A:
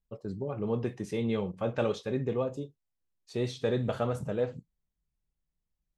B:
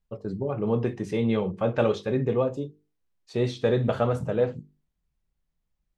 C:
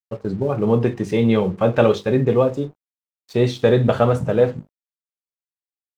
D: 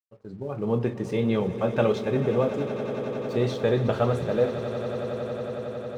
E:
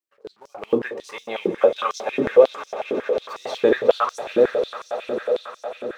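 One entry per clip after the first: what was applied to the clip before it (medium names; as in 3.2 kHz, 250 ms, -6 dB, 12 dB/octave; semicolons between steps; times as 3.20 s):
treble shelf 5.4 kHz -10 dB; hum notches 50/100/150/200/250/300/350/400/450 Hz; trim +6.5 dB
crossover distortion -54 dBFS; trim +8 dB
fade-in on the opening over 0.77 s; echo with a slow build-up 91 ms, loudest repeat 8, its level -15.5 dB; trim -7.5 dB
step-sequenced high-pass 11 Hz 320–5700 Hz; trim +2.5 dB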